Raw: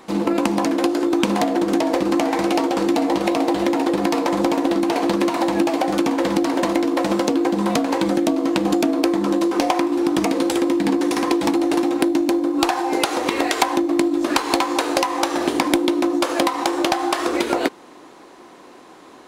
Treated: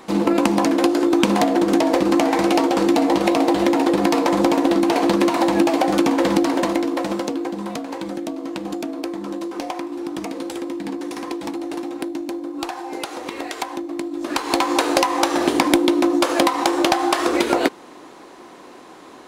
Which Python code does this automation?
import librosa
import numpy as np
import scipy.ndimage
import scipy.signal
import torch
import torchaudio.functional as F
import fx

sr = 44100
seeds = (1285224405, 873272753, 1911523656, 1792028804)

y = fx.gain(x, sr, db=fx.line((6.35, 2.0), (7.76, -9.0), (14.07, -9.0), (14.7, 2.0)))